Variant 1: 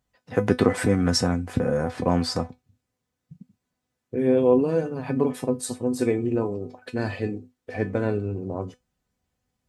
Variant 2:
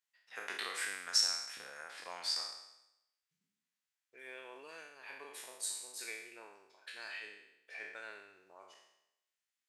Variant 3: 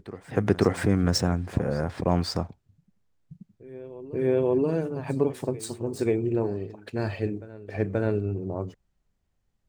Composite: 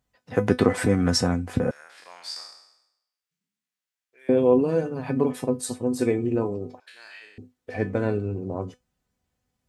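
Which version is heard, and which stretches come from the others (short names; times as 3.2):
1
1.71–4.29 from 2
6.8–7.38 from 2
not used: 3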